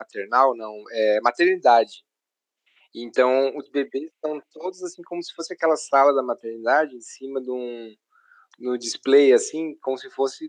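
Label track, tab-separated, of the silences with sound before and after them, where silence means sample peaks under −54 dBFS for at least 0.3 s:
2.000000	2.670000	silence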